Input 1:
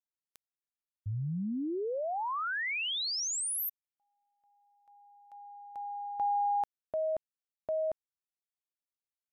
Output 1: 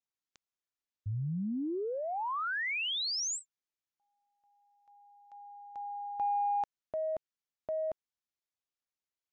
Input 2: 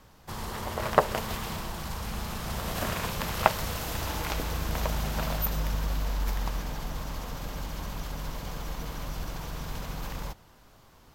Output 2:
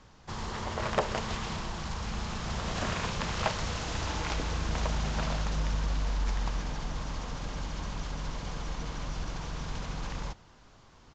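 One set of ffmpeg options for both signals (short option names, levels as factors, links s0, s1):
-af "aresample=16000,asoftclip=type=tanh:threshold=0.133,aresample=44100,equalizer=f=600:t=o:w=0.77:g=-2"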